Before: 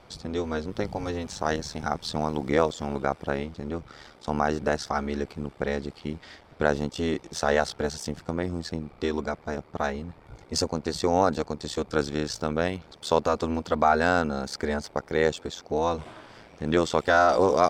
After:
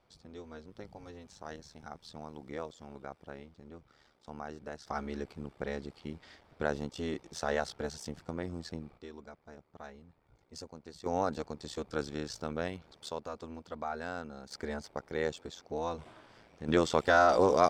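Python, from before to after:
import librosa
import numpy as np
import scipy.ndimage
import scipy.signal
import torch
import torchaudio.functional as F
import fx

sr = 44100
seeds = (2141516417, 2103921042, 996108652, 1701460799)

y = fx.gain(x, sr, db=fx.steps((0.0, -18.0), (4.87, -9.0), (8.98, -20.0), (11.06, -9.5), (13.09, -17.0), (14.51, -10.0), (16.68, -4.0)))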